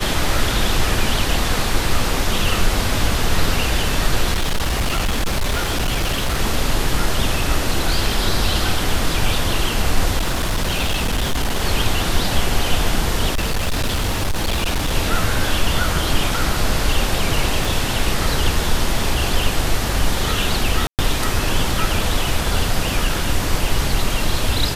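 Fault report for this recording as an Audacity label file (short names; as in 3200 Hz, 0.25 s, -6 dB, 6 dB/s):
4.330000	6.390000	clipped -15 dBFS
10.170000	11.620000	clipped -15 dBFS
13.330000	14.940000	clipped -15.5 dBFS
17.650000	17.650000	pop
20.870000	20.990000	gap 0.118 s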